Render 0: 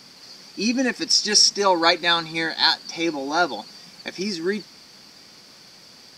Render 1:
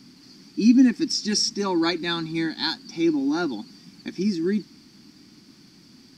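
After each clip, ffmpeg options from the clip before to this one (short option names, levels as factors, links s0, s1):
-af "lowshelf=f=390:t=q:w=3:g=10,volume=0.398"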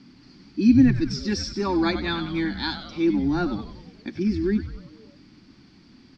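-filter_complex "[0:a]lowpass=3400,asplit=2[s0][s1];[s1]asplit=6[s2][s3][s4][s5][s6][s7];[s2]adelay=95,afreqshift=-130,volume=0.316[s8];[s3]adelay=190,afreqshift=-260,volume=0.17[s9];[s4]adelay=285,afreqshift=-390,volume=0.0923[s10];[s5]adelay=380,afreqshift=-520,volume=0.0495[s11];[s6]adelay=475,afreqshift=-650,volume=0.0269[s12];[s7]adelay=570,afreqshift=-780,volume=0.0145[s13];[s8][s9][s10][s11][s12][s13]amix=inputs=6:normalize=0[s14];[s0][s14]amix=inputs=2:normalize=0"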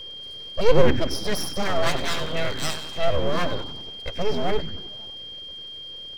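-af "aeval=exprs='abs(val(0))':c=same,aeval=exprs='val(0)+0.0112*sin(2*PI*3200*n/s)':c=same,volume=1.5"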